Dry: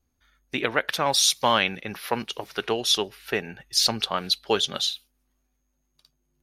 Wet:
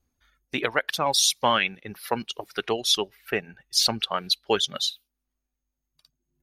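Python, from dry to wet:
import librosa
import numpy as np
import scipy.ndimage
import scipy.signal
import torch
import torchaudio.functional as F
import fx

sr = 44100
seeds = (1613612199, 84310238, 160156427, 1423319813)

y = fx.dereverb_blind(x, sr, rt60_s=1.6)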